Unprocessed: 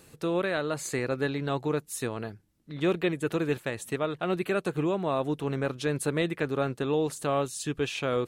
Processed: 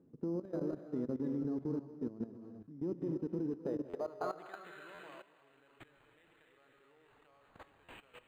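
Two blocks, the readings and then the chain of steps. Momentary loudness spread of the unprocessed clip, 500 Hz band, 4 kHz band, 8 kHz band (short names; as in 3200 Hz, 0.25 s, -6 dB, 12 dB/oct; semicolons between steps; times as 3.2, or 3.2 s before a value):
4 LU, -14.5 dB, -25.0 dB, under -30 dB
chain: high shelf 2500 Hz +3 dB; compressor 8:1, threshold -29 dBFS, peak gain reduction 8 dB; tape spacing loss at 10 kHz 31 dB; soft clip -24 dBFS, distortion -24 dB; resonator 83 Hz, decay 0.39 s, harmonics all, mix 40%; band-pass sweep 250 Hz -> 6100 Hz, 3.44–5.3; added harmonics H 4 -42 dB, 5 -29 dB, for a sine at -28.5 dBFS; on a send: thin delay 0.192 s, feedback 62%, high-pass 1700 Hz, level -7.5 dB; on the sum: non-linear reverb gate 0.34 s rising, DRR 2.5 dB; level quantiser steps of 15 dB; stuck buffer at 3.89/4.94/7.84, samples 512, times 3; decimation joined by straight lines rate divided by 8×; gain +9.5 dB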